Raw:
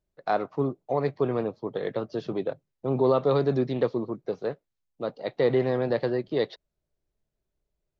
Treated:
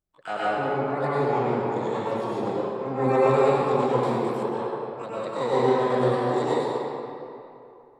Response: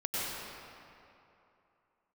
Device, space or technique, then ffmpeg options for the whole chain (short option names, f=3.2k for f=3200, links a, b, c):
shimmer-style reverb: -filter_complex "[0:a]asplit=2[a][b];[b]asetrate=88200,aresample=44100,atempo=0.5,volume=-5dB[c];[a][c]amix=inputs=2:normalize=0[d];[1:a]atrim=start_sample=2205[e];[d][e]afir=irnorm=-1:irlink=0,asettb=1/sr,asplit=3[f][g][h];[f]atrim=end=4.034[i];[g]atrim=start=4.03:end=4.43,asetpts=PTS-STARTPTS,afade=t=in:d=0.004:c=qsin,afade=t=out:st=0.396:d=0.004:c=qsin,aemphasis=mode=production:type=75kf[j];[h]atrim=start=4.426[k];[i][j]acrossfade=d=0.004:c1=hsin:c2=qsin[l];[l][k]acrossfade=d=0.004:c1=qsin:c2=hsin,volume=-5.5dB"